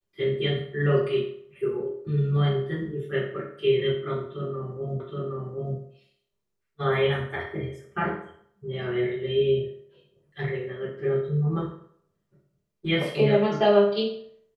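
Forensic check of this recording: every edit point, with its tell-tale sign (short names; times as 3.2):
5 repeat of the last 0.77 s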